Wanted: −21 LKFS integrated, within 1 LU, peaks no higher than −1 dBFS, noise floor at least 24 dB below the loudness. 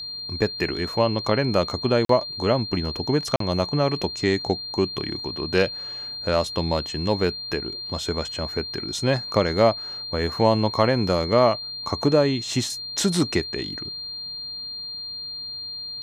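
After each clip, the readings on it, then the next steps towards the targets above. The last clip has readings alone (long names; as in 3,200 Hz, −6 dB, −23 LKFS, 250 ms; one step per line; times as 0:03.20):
number of dropouts 2; longest dropout 43 ms; interfering tone 4,200 Hz; level of the tone −31 dBFS; integrated loudness −24.0 LKFS; sample peak −5.0 dBFS; target loudness −21.0 LKFS
→ repair the gap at 0:02.05/0:03.36, 43 ms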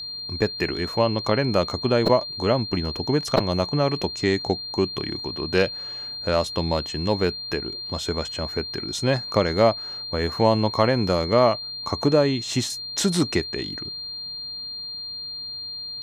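number of dropouts 0; interfering tone 4,200 Hz; level of the tone −31 dBFS
→ notch filter 4,200 Hz, Q 30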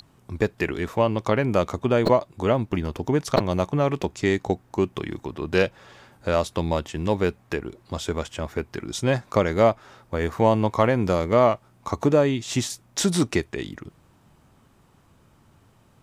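interfering tone none found; integrated loudness −24.0 LKFS; sample peak −4.5 dBFS; target loudness −21.0 LKFS
→ level +3 dB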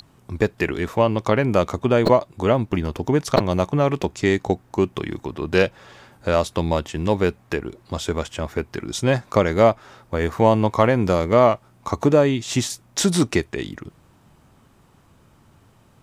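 integrated loudness −21.0 LKFS; sample peak −2.0 dBFS; background noise floor −55 dBFS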